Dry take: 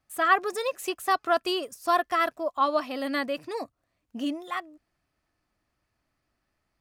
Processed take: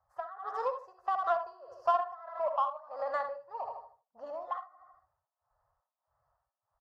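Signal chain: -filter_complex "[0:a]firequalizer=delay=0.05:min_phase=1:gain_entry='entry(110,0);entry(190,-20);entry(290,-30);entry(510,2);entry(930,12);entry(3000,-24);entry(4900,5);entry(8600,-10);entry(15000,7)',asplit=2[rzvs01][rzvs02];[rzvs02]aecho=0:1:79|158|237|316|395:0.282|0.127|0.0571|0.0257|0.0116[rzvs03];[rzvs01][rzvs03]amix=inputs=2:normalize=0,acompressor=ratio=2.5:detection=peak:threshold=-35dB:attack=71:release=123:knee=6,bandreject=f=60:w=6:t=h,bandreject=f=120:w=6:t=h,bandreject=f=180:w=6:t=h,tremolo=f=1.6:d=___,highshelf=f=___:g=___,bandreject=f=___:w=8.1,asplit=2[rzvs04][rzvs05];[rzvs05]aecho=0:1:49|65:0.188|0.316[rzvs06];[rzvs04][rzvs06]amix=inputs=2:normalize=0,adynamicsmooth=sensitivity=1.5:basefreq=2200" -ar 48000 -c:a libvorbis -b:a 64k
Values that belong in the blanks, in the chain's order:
0.91, 4700, -6.5, 2300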